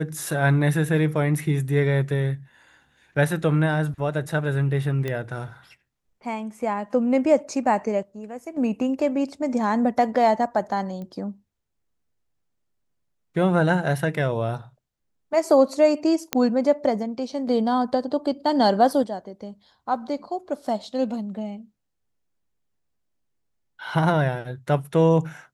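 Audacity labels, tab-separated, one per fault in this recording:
5.080000	5.080000	click −16 dBFS
11.020000	11.020000	click −26 dBFS
16.330000	16.330000	click −5 dBFS

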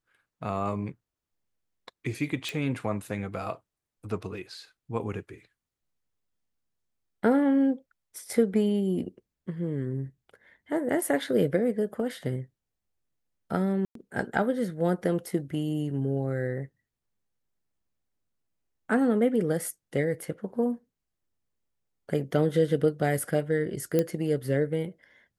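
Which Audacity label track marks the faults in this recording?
2.490000	2.490000	click
13.850000	13.950000	drop-out 103 ms
23.990000	23.990000	click −12 dBFS

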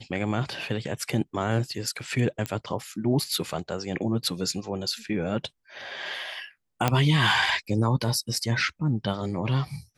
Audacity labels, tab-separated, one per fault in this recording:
2.460000	2.460000	click −14 dBFS
6.880000	6.880000	click −7 dBFS

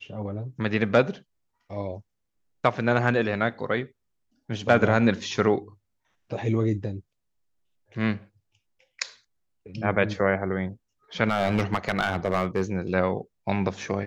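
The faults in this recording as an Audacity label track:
11.290000	12.770000	clipping −17 dBFS

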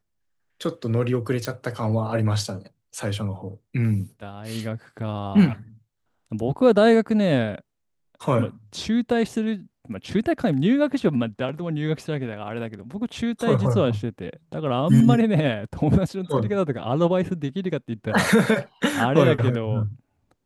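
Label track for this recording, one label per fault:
1.450000	1.450000	click −13 dBFS

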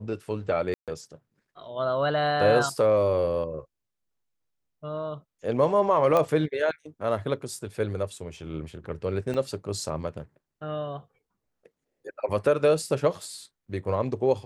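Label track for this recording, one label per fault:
0.740000	0.880000	drop-out 137 ms
6.170000	6.170000	click −12 dBFS
9.340000	9.340000	drop-out 2.7 ms

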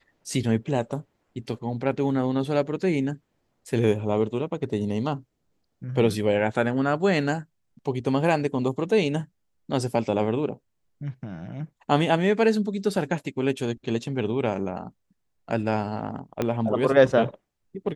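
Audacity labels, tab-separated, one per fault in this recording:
16.420000	16.420000	click −12 dBFS

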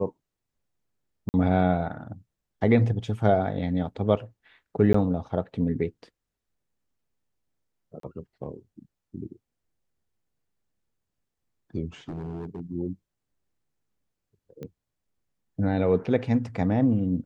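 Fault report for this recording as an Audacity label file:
1.290000	1.340000	drop-out 49 ms
4.930000	4.940000	drop-out 14 ms
8.000000	8.030000	drop-out 33 ms
12.080000	12.610000	clipping −31 dBFS
14.630000	14.630000	click −26 dBFS

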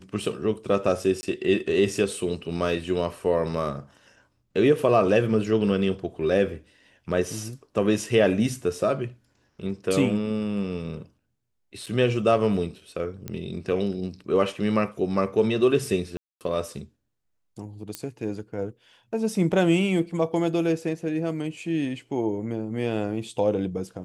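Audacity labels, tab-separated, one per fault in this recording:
1.210000	1.230000	drop-out 20 ms
11.860000	11.870000	drop-out 6.2 ms
13.280000	13.280000	click −18 dBFS
16.170000	16.410000	drop-out 238 ms
17.950000	17.950000	click −14 dBFS

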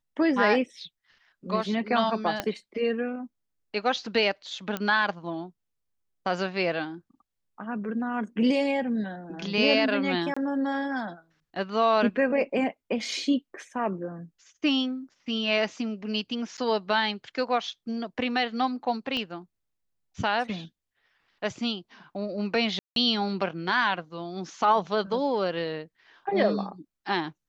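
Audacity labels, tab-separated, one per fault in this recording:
2.400000	2.400000	click −12 dBFS
4.770000	4.770000	click −15 dBFS
10.340000	10.370000	drop-out 25 ms
16.570000	16.580000	drop-out 8.4 ms
19.170000	19.170000	click −19 dBFS
22.790000	22.960000	drop-out 172 ms

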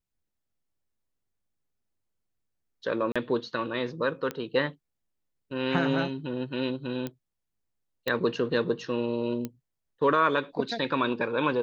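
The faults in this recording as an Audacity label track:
3.120000	3.160000	drop-out 36 ms
4.310000	4.310000	click −18 dBFS
7.070000	7.070000	click −20 dBFS
8.080000	8.080000	click −16 dBFS
9.450000	9.450000	click −19 dBFS

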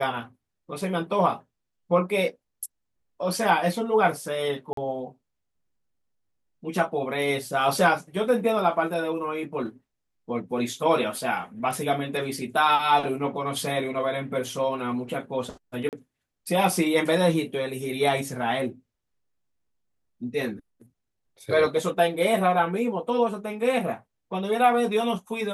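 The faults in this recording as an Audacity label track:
4.730000	4.770000	drop-out 43 ms
15.890000	15.930000	drop-out 38 ms

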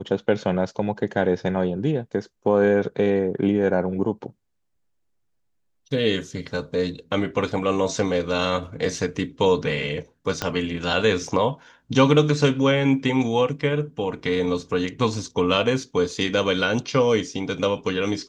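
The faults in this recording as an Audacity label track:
10.420000	10.420000	click −9 dBFS

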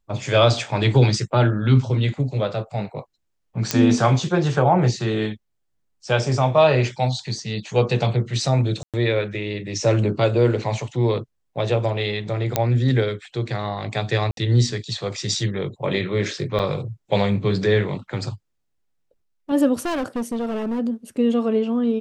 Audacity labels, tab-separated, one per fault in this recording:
3.710000	3.710000	click −4 dBFS
8.830000	8.940000	drop-out 107 ms
12.560000	12.560000	click −3 dBFS
14.310000	14.370000	drop-out 62 ms
16.590000	16.600000	drop-out 6.3 ms
19.850000	20.800000	clipping −21.5 dBFS

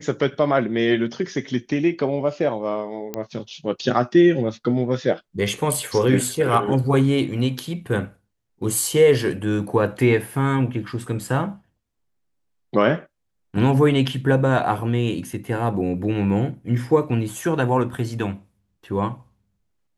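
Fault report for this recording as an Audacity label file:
3.140000	3.140000	click −12 dBFS

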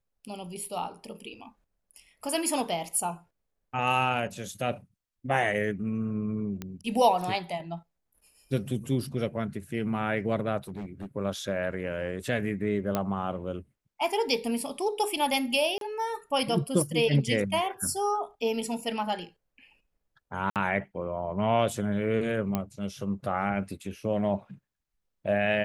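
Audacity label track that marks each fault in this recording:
6.620000	6.620000	click −20 dBFS
10.680000	11.060000	clipping −32.5 dBFS
12.950000	12.950000	click −13 dBFS
15.780000	15.810000	drop-out 32 ms
20.500000	20.560000	drop-out 58 ms
22.550000	22.550000	click −14 dBFS

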